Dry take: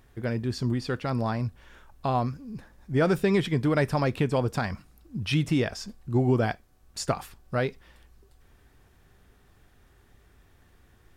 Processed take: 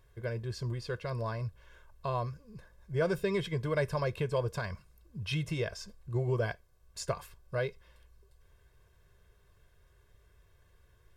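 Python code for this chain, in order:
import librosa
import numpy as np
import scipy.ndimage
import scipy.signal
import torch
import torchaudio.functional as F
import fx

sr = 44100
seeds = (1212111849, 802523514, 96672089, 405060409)

y = x + 0.88 * np.pad(x, (int(1.9 * sr / 1000.0), 0))[:len(x)]
y = F.gain(torch.from_numpy(y), -9.0).numpy()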